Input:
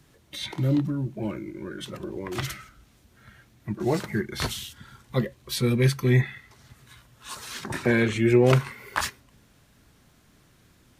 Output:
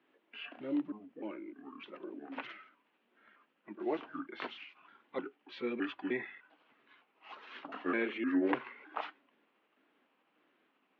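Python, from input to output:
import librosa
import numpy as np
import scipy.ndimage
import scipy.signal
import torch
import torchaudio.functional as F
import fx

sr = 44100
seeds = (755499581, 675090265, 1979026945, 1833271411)

y = fx.pitch_trill(x, sr, semitones=-5.0, every_ms=305)
y = scipy.signal.sosfilt(scipy.signal.ellip(3, 1.0, 50, [280.0, 2900.0], 'bandpass', fs=sr, output='sos'), y)
y = F.gain(torch.from_numpy(y), -8.5).numpy()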